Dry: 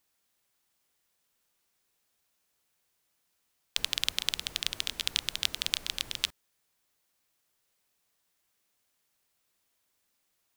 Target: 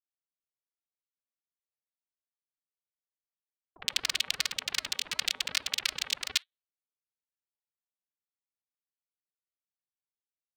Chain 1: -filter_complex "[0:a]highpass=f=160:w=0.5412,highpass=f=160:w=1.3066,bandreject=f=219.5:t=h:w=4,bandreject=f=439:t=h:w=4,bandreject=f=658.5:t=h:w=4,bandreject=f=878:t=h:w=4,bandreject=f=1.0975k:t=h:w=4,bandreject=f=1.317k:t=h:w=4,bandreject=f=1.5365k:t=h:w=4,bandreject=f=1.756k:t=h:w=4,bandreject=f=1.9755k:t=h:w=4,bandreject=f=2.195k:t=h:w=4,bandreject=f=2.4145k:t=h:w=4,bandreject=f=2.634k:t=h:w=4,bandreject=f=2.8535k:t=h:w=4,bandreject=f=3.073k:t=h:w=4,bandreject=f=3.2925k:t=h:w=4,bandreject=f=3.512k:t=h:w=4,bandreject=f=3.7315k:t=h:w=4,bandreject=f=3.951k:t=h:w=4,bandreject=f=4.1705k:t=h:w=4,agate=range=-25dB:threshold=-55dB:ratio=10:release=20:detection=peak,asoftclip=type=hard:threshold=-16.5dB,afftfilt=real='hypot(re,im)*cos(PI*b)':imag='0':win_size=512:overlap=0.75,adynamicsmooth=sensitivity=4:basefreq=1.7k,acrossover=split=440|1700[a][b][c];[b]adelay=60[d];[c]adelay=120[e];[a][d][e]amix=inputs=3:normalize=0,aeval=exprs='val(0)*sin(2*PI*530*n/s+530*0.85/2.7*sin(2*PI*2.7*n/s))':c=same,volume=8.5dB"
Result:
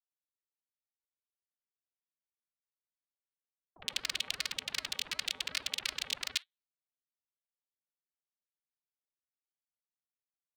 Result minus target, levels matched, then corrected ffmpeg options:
hard clip: distortion +9 dB
-filter_complex "[0:a]highpass=f=160:w=0.5412,highpass=f=160:w=1.3066,bandreject=f=219.5:t=h:w=4,bandreject=f=439:t=h:w=4,bandreject=f=658.5:t=h:w=4,bandreject=f=878:t=h:w=4,bandreject=f=1.0975k:t=h:w=4,bandreject=f=1.317k:t=h:w=4,bandreject=f=1.5365k:t=h:w=4,bandreject=f=1.756k:t=h:w=4,bandreject=f=1.9755k:t=h:w=4,bandreject=f=2.195k:t=h:w=4,bandreject=f=2.4145k:t=h:w=4,bandreject=f=2.634k:t=h:w=4,bandreject=f=2.8535k:t=h:w=4,bandreject=f=3.073k:t=h:w=4,bandreject=f=3.2925k:t=h:w=4,bandreject=f=3.512k:t=h:w=4,bandreject=f=3.7315k:t=h:w=4,bandreject=f=3.951k:t=h:w=4,bandreject=f=4.1705k:t=h:w=4,agate=range=-25dB:threshold=-55dB:ratio=10:release=20:detection=peak,asoftclip=type=hard:threshold=-9dB,afftfilt=real='hypot(re,im)*cos(PI*b)':imag='0':win_size=512:overlap=0.75,adynamicsmooth=sensitivity=4:basefreq=1.7k,acrossover=split=440|1700[a][b][c];[b]adelay=60[d];[c]adelay=120[e];[a][d][e]amix=inputs=3:normalize=0,aeval=exprs='val(0)*sin(2*PI*530*n/s+530*0.85/2.7*sin(2*PI*2.7*n/s))':c=same,volume=8.5dB"

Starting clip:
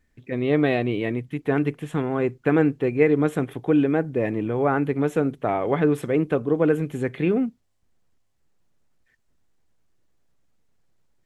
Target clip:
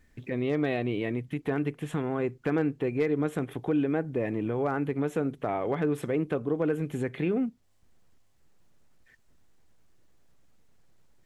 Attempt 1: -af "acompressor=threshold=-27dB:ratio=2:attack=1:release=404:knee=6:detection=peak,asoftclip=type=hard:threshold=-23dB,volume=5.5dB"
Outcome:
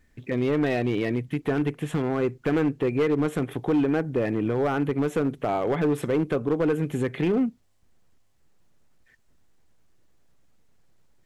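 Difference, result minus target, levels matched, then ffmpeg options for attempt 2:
compressor: peak gain reduction -5 dB
-af "acompressor=threshold=-37dB:ratio=2:attack=1:release=404:knee=6:detection=peak,asoftclip=type=hard:threshold=-23dB,volume=5.5dB"

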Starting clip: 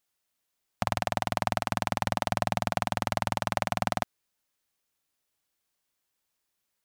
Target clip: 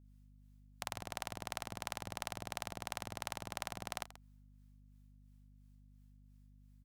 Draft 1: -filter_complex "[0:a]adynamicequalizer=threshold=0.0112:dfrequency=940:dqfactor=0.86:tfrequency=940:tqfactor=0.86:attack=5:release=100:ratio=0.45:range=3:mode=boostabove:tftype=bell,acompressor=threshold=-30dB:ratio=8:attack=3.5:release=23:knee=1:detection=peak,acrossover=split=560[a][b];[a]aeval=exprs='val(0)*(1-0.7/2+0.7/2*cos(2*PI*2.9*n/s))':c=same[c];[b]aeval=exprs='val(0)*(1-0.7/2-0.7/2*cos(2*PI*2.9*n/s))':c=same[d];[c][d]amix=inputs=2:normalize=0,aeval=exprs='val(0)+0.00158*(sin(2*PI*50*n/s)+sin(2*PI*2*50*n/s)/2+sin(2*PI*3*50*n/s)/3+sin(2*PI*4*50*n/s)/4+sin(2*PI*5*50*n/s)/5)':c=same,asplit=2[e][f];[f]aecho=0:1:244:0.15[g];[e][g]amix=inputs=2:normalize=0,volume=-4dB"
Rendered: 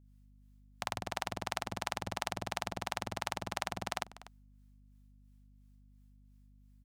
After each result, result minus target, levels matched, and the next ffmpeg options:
echo 0.111 s late; compressor: peak gain reduction -6.5 dB
-filter_complex "[0:a]adynamicequalizer=threshold=0.0112:dfrequency=940:dqfactor=0.86:tfrequency=940:tqfactor=0.86:attack=5:release=100:ratio=0.45:range=3:mode=boostabove:tftype=bell,acompressor=threshold=-30dB:ratio=8:attack=3.5:release=23:knee=1:detection=peak,acrossover=split=560[a][b];[a]aeval=exprs='val(0)*(1-0.7/2+0.7/2*cos(2*PI*2.9*n/s))':c=same[c];[b]aeval=exprs='val(0)*(1-0.7/2-0.7/2*cos(2*PI*2.9*n/s))':c=same[d];[c][d]amix=inputs=2:normalize=0,aeval=exprs='val(0)+0.00158*(sin(2*PI*50*n/s)+sin(2*PI*2*50*n/s)/2+sin(2*PI*3*50*n/s)/3+sin(2*PI*4*50*n/s)/4+sin(2*PI*5*50*n/s)/5)':c=same,asplit=2[e][f];[f]aecho=0:1:133:0.15[g];[e][g]amix=inputs=2:normalize=0,volume=-4dB"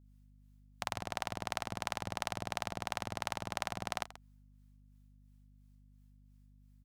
compressor: peak gain reduction -6.5 dB
-filter_complex "[0:a]adynamicequalizer=threshold=0.0112:dfrequency=940:dqfactor=0.86:tfrequency=940:tqfactor=0.86:attack=5:release=100:ratio=0.45:range=3:mode=boostabove:tftype=bell,acompressor=threshold=-37.5dB:ratio=8:attack=3.5:release=23:knee=1:detection=peak,acrossover=split=560[a][b];[a]aeval=exprs='val(0)*(1-0.7/2+0.7/2*cos(2*PI*2.9*n/s))':c=same[c];[b]aeval=exprs='val(0)*(1-0.7/2-0.7/2*cos(2*PI*2.9*n/s))':c=same[d];[c][d]amix=inputs=2:normalize=0,aeval=exprs='val(0)+0.00158*(sin(2*PI*50*n/s)+sin(2*PI*2*50*n/s)/2+sin(2*PI*3*50*n/s)/3+sin(2*PI*4*50*n/s)/4+sin(2*PI*5*50*n/s)/5)':c=same,asplit=2[e][f];[f]aecho=0:1:133:0.15[g];[e][g]amix=inputs=2:normalize=0,volume=-4dB"

